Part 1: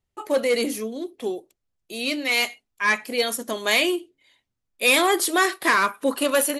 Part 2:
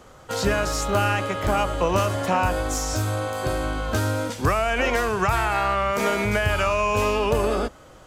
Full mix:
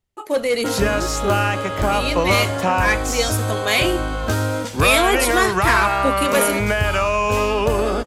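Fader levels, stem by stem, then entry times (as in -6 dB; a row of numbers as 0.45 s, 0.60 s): +1.5 dB, +3.0 dB; 0.00 s, 0.35 s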